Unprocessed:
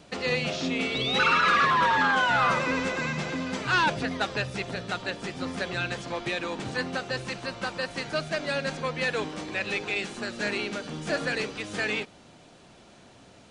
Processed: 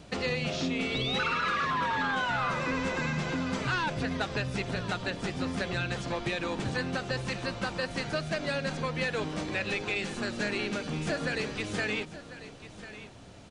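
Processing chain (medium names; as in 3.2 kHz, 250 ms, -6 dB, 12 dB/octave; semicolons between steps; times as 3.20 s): bass shelf 130 Hz +10.5 dB; compression, threshold -27 dBFS, peak gain reduction 9 dB; delay 1045 ms -14.5 dB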